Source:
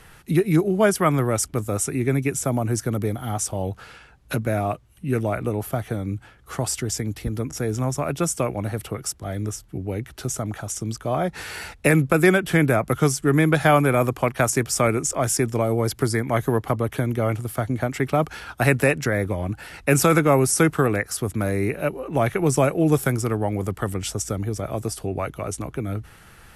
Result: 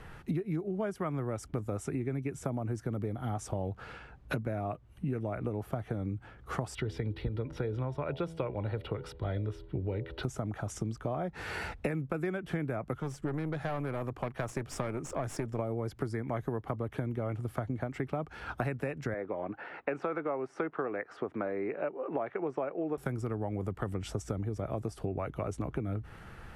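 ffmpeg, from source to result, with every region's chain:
-filter_complex "[0:a]asettb=1/sr,asplit=3[a][b][c];[a]atrim=end=6.754[d];[b]atrim=start=6.75:end=10.23,asetpts=PTS-STARTPTS,afade=t=in:d=0.004:c=qsin,afade=t=out:st=3.476:d=0.004:c=qsin,highshelf=f=5.1k:t=q:w=3:g=-10.5,aecho=1:1:2.1:0.41,atrim=end_sample=153468,bandreject=f=82.06:t=h:w=4,bandreject=f=164.12:t=h:w=4,bandreject=f=246.18:t=h:w=4,bandreject=f=328.24:t=h:w=4,bandreject=f=410.3:t=h:w=4,bandreject=f=492.36:t=h:w=4,bandreject=f=574.42:t=h:w=4,bandreject=f=656.48:t=h:w=4,bandreject=f=738.54:t=h:w=4,bandreject=f=820.6:t=h:w=4,bandreject=f=902.66:t=h:w=4,bandreject=f=984.72:t=h:w=4[e];[c]atrim=start=10.226[f];[d][e]acrossfade=d=0.004:c1=hsin:c2=qsin[g];[g][f]acrossfade=d=0.004:c1=qsin:c2=hsin,asettb=1/sr,asplit=3[h][i][j];[h]atrim=end=13.004[k];[i]atrim=start=13:end=15.59,asetpts=PTS-STARTPTS,afade=t=in:d=0.004:c=qsin,afade=t=out:st=2.586:d=0.004:c=qsin,aeval=exprs='if(lt(val(0),0),0.708*val(0),val(0))':c=same,aeval=exprs='(tanh(10*val(0)+0.5)-tanh(0.5))/10':c=same[l];[j]atrim=start=15.586[m];[k][l]acrossfade=d=0.004:c1=hsin:c2=qsin[n];[n][m]acrossfade=d=0.004:c1=qsin:c2=hsin,asettb=1/sr,asplit=3[o][p][q];[o]atrim=end=19.144[r];[p]atrim=start=19.14:end=22.98,asetpts=PTS-STARTPTS,afade=t=in:d=0.004:c=qsin,afade=t=out:st=3.836:d=0.004:c=qsin,asoftclip=type=hard:threshold=-6.5dB,highpass=380,lowpass=2.1k[s];[q]atrim=start=22.976[t];[r][s]acrossfade=d=0.004:c1=hsin:c2=qsin[u];[u][t]acrossfade=d=0.004:c1=qsin:c2=hsin,lowpass=f=1.3k:p=1,acompressor=threshold=-32dB:ratio=10,volume=1.5dB"

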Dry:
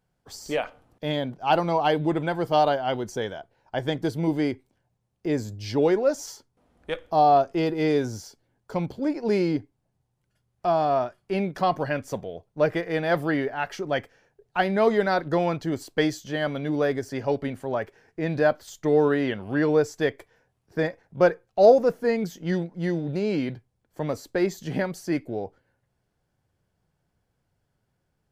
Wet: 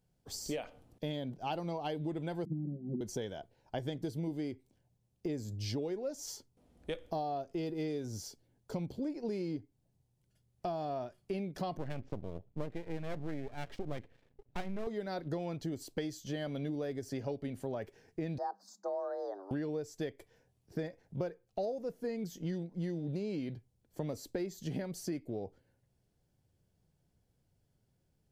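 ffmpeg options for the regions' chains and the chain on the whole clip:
-filter_complex "[0:a]asettb=1/sr,asplit=3[a][b][c];[a]atrim=end=2.454[d];[b]atrim=start=2.45:end=3.01,asetpts=PTS-STARTPTS,afade=t=in:d=0.004:c=qsin,afade=t=out:st=0.556:d=0.004:c=qsin,asuperpass=centerf=220:order=8:qfactor=1.1,equalizer=f=210:w=2:g=14.5,aecho=1:1:5.6:0.83,atrim=end_sample=24696[e];[c]atrim=start=3.006[f];[d][e]acrossfade=d=0.004:c1=hsin:c2=qsin[g];[g][f]acrossfade=d=0.004:c1=qsin:c2=hsin,asettb=1/sr,asplit=3[h][i][j];[h]atrim=end=11.774[k];[i]atrim=start=11.77:end=14.87,asetpts=PTS-STARTPTS,afade=t=in:d=0.004:c=qsin,afade=t=out:st=3.096:d=0.004:c=qsin,lowpass=f=3k:w=0.5412,lowpass=f=3k:w=1.3066,lowshelf=f=240:g=9.5,aeval=exprs='max(val(0),0)':c=same[l];[j]atrim=start=14.866[m];[k][l]acrossfade=d=0.004:c1=hsin:c2=qsin[n];[n][m]acrossfade=d=0.004:c1=qsin:c2=hsin,asettb=1/sr,asplit=3[o][p][q];[o]atrim=end=18.384[r];[p]atrim=start=18.38:end=19.51,asetpts=PTS-STARTPTS,afade=t=in:d=0.004:c=qsin,afade=t=out:st=1.126:d=0.004:c=qsin,acrossover=split=450 4500:gain=0.251 1 0.0891[s][t][u];[s][t][u]amix=inputs=3:normalize=0,afreqshift=190,asuperstop=centerf=2600:order=8:qfactor=0.82[v];[q]atrim=start=19.506[w];[r][v]acrossfade=d=0.004:c1=hsin:c2=qsin[x];[x][w]acrossfade=d=0.004:c1=qsin:c2=hsin,equalizer=f=1.3k:t=o:w=1.9:g=-10.5,acompressor=threshold=-34dB:ratio=10"

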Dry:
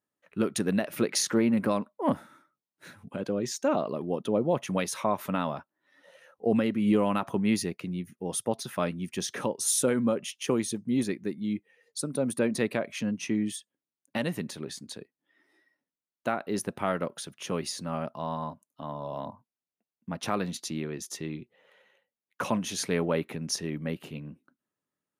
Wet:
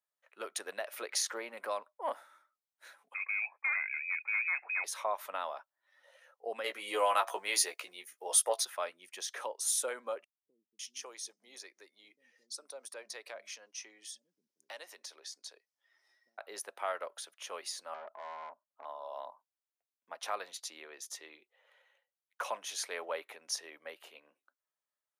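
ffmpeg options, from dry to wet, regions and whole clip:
-filter_complex "[0:a]asettb=1/sr,asplit=3[a][b][c];[a]atrim=end=3.144[d];[b]atrim=start=3.14:end=4.84,asetpts=PTS-STARTPTS,afade=t=in:d=0.004:c=qsin,afade=t=out:st=1.696:d=0.004:c=qsin,volume=22.5dB,asoftclip=hard,volume=-22.5dB,lowpass=f=2.3k:t=q:w=0.5098,lowpass=f=2.3k:t=q:w=0.6013,lowpass=f=2.3k:t=q:w=0.9,lowpass=f=2.3k:t=q:w=2.563,afreqshift=-2700[e];[c]atrim=start=4.836[f];[d][e]acrossfade=d=0.004:c1=hsin:c2=qsin[g];[g][f]acrossfade=d=0.004:c1=qsin:c2=hsin,asettb=1/sr,asplit=3[h][i][j];[h]atrim=end=6.644[k];[i]atrim=start=6.64:end=8.65,asetpts=PTS-STARTPTS,afade=t=in:d=0.004:c=qsin,afade=t=out:st=2.006:d=0.004:c=qsin,bass=f=250:g=-13,treble=f=4k:g=5,asplit=2[l][m];[m]adelay=16,volume=-6dB[n];[l][n]amix=inputs=2:normalize=0,atrim=end_sample=88641,acontrast=65[o];[j]atrim=start=8.646[p];[k][o]acrossfade=d=0.004:c1=hsin:c2=qsin[q];[q][p]acrossfade=d=0.004:c1=qsin:c2=hsin,asettb=1/sr,asplit=3[r][s][t];[r]atrim=end=10.244[u];[s]atrim=start=10.24:end=16.38,asetpts=PTS-STARTPTS,afade=t=in:d=0.004:c=qsin,afade=t=out:st=6.136:d=0.004:c=qsin,equalizer=f=5.5k:t=o:w=0.64:g=11.5,acompressor=threshold=-46dB:ratio=1.5:attack=3.2:release=140:knee=1:detection=peak,acrossover=split=210[v][w];[w]adelay=550[x];[v][x]amix=inputs=2:normalize=0,atrim=end_sample=270774[y];[t]atrim=start=16.376[z];[u][y]acrossfade=d=0.004:c1=hsin:c2=qsin[aa];[aa][z]acrossfade=d=0.004:c1=qsin:c2=hsin,asettb=1/sr,asplit=3[ab][ac][ad];[ab]atrim=end=17.944[ae];[ac]atrim=start=17.94:end=18.85,asetpts=PTS-STARTPTS,afade=t=in:d=0.004:c=qsin,afade=t=out:st=0.906:d=0.004:c=qsin,lowpass=f=1.6k:w=0.5412,lowpass=f=1.6k:w=1.3066,lowshelf=f=380:g=7.5,aeval=exprs='(tanh(35.5*val(0)+0.3)-tanh(0.3))/35.5':c=same[af];[ad]atrim=start=18.846[ag];[ae][af]acrossfade=d=0.004:c1=hsin:c2=qsin[ah];[ah][ag]acrossfade=d=0.004:c1=qsin:c2=hsin,highpass=f=570:w=0.5412,highpass=f=570:w=1.3066,bandreject=f=2.7k:w=26,volume=-5dB"

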